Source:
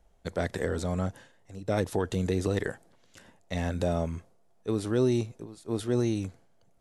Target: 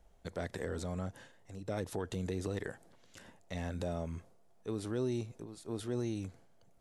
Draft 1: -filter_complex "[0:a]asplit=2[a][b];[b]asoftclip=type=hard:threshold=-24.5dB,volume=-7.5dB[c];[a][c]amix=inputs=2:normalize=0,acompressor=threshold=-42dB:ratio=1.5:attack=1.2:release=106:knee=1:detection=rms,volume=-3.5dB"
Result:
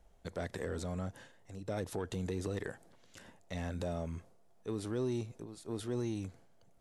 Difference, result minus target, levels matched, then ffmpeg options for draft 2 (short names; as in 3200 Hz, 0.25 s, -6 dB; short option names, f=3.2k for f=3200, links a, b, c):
hard clip: distortion +32 dB
-filter_complex "[0:a]asplit=2[a][b];[b]asoftclip=type=hard:threshold=-14.5dB,volume=-7.5dB[c];[a][c]amix=inputs=2:normalize=0,acompressor=threshold=-42dB:ratio=1.5:attack=1.2:release=106:knee=1:detection=rms,volume=-3.5dB"